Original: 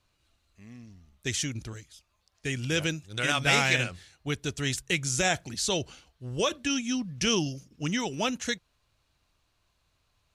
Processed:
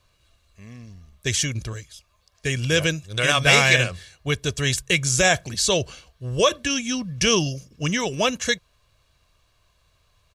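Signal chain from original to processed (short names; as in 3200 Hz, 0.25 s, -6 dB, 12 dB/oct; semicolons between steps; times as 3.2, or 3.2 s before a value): comb 1.8 ms, depth 45%; gain +7 dB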